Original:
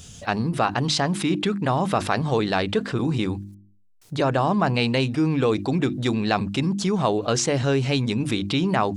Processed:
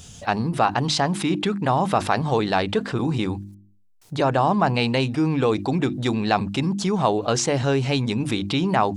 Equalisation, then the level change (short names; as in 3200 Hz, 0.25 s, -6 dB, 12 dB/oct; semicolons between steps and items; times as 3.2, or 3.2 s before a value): bell 840 Hz +4.5 dB 0.61 oct; 0.0 dB